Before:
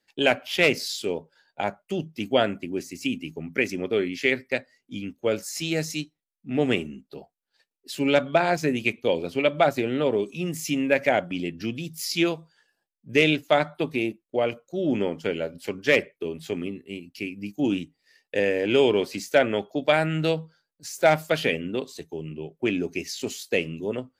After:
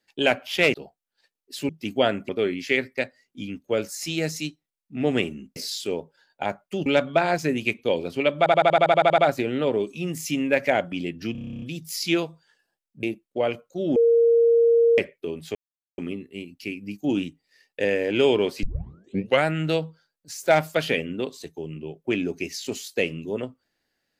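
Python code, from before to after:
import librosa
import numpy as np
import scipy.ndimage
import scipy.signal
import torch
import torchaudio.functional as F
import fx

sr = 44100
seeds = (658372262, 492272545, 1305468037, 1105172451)

y = fx.edit(x, sr, fx.swap(start_s=0.74, length_s=1.3, other_s=7.1, other_length_s=0.95),
    fx.cut(start_s=2.64, length_s=1.19),
    fx.stutter(start_s=9.57, slice_s=0.08, count=11),
    fx.stutter(start_s=11.71, slice_s=0.03, count=11),
    fx.cut(start_s=13.12, length_s=0.89),
    fx.bleep(start_s=14.94, length_s=1.02, hz=465.0, db=-14.0),
    fx.insert_silence(at_s=16.53, length_s=0.43),
    fx.tape_start(start_s=19.18, length_s=0.82), tone=tone)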